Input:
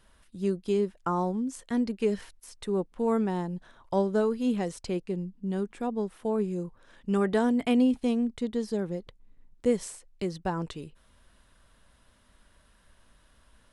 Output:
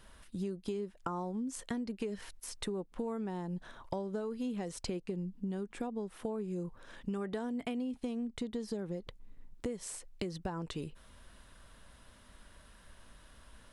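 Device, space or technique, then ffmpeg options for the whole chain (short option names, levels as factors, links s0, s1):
serial compression, peaks first: -af "acompressor=threshold=0.02:ratio=6,acompressor=threshold=0.00891:ratio=2,volume=1.58"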